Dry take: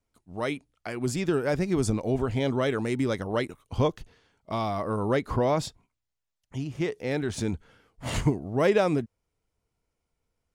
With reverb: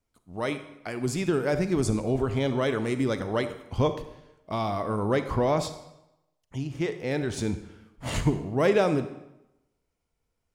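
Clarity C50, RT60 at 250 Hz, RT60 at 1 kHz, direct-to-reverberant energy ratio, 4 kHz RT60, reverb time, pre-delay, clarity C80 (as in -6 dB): 11.0 dB, 0.85 s, 0.90 s, 10.0 dB, 0.75 s, 0.90 s, 34 ms, 13.5 dB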